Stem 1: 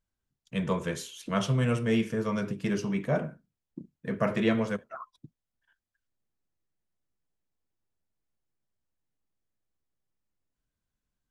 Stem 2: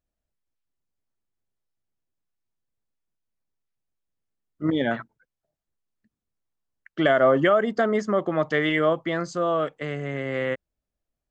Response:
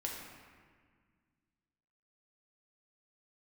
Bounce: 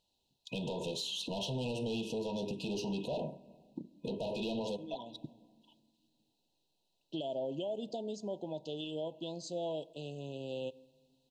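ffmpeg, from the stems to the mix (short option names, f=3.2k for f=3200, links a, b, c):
-filter_complex "[0:a]asplit=2[a][b];[b]highpass=f=720:p=1,volume=23dB,asoftclip=type=tanh:threshold=-13dB[c];[a][c]amix=inputs=2:normalize=0,lowpass=f=2.7k:p=1,volume=-6dB,acompressor=threshold=-24dB:ratio=6,volume=-2.5dB,asplit=3[d][e][f];[e]volume=-20dB[g];[1:a]highshelf=f=5.3k:g=11.5,adelay=150,volume=-13.5dB,asplit=2[h][i];[i]volume=-18dB[j];[f]apad=whole_len=505340[k];[h][k]sidechaincompress=threshold=-37dB:ratio=4:attack=16:release=1360[l];[2:a]atrim=start_sample=2205[m];[g][j]amix=inputs=2:normalize=0[n];[n][m]afir=irnorm=-1:irlink=0[o];[d][l][o]amix=inputs=3:normalize=0,afftfilt=real='re*(1-between(b*sr/4096,1000,2500))':imag='im*(1-between(b*sr/4096,1000,2500))':win_size=4096:overlap=0.75,equalizer=f=4k:w=4.1:g=12,alimiter=level_in=5.5dB:limit=-24dB:level=0:latency=1:release=281,volume=-5.5dB"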